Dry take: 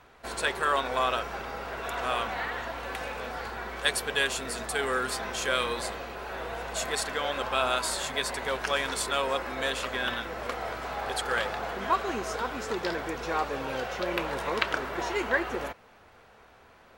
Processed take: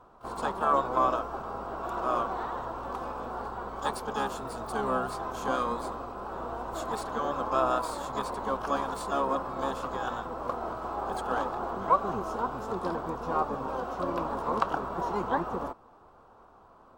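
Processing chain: harmony voices -12 st -4 dB, +12 st -11 dB; resonant high shelf 1.5 kHz -9.5 dB, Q 3; trim -3.5 dB

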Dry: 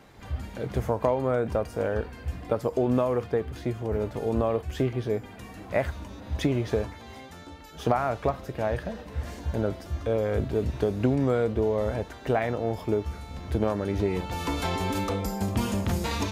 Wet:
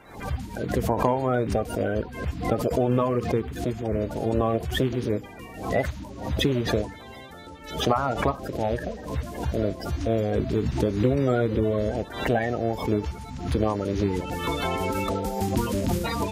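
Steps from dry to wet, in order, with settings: coarse spectral quantiser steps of 30 dB; swell ahead of each attack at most 91 dB/s; trim +2 dB

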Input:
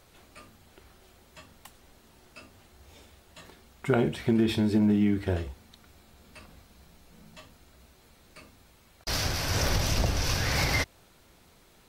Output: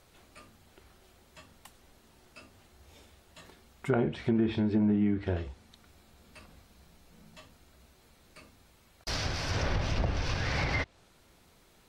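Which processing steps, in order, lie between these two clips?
low-pass that closes with the level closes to 2 kHz, closed at -20 dBFS; trim -3 dB

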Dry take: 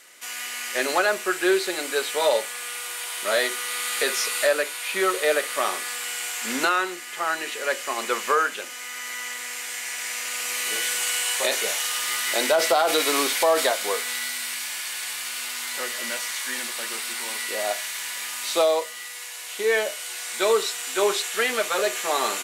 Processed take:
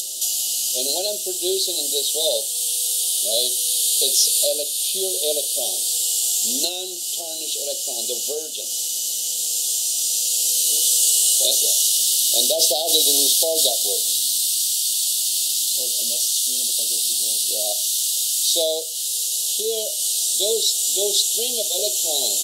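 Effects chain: upward compressor, threshold -24 dBFS; inverse Chebyshev band-stop 990–2300 Hz, stop band 40 dB; tilt shelf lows -8 dB, about 1.3 kHz; trim +3 dB

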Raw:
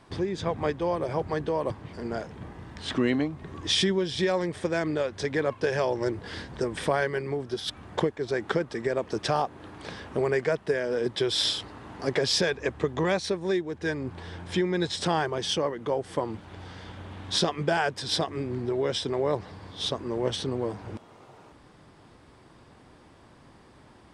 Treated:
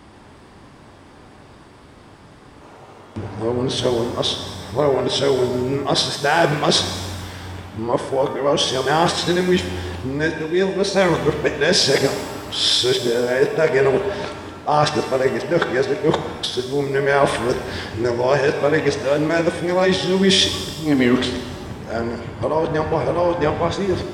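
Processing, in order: reverse the whole clip; pitch-shifted reverb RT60 1.3 s, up +7 st, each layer -8 dB, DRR 6 dB; trim +8.5 dB

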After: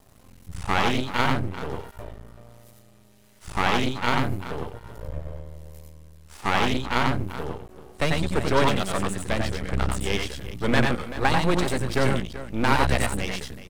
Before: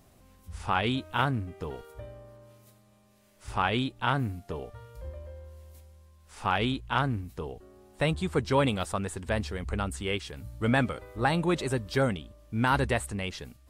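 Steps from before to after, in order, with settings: multi-tap echo 91/92/108/383 ms -3.5/-10.5/-10/-14 dB; half-wave rectifier; trim +7 dB

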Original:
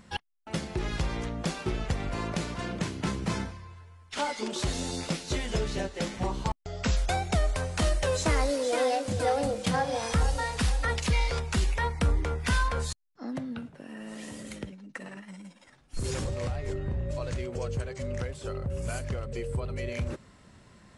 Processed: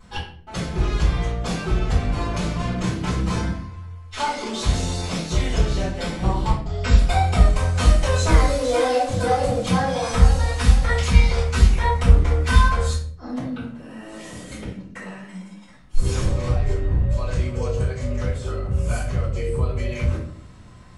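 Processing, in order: 5.93–7.45 s: band-stop 6.3 kHz, Q 6.8; simulated room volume 57 m³, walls mixed, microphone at 3.4 m; trim -8 dB

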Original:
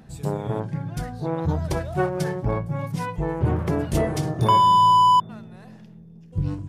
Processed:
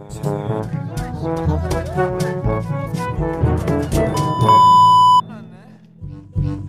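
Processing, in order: expander -39 dBFS; on a send: reverse echo 343 ms -12.5 dB; on the sum: trim +5 dB

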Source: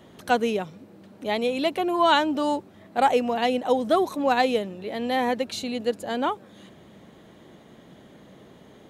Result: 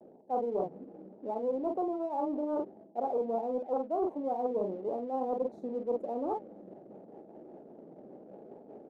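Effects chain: rotary cabinet horn 5 Hz; doubling 47 ms -7 dB; reverse; compression 16:1, threshold -32 dBFS, peak gain reduction 18 dB; reverse; high-pass 330 Hz 12 dB/octave; vibrato 0.85 Hz 45 cents; elliptic low-pass 830 Hz, stop band 40 dB; in parallel at -10.5 dB: crossover distortion -57 dBFS; on the sum: loudspeaker Doppler distortion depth 0.18 ms; trim +4 dB

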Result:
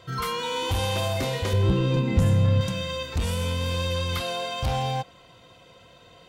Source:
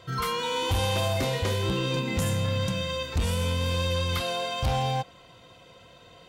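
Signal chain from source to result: 1.53–2.61 s: tilt EQ -2.5 dB/octave

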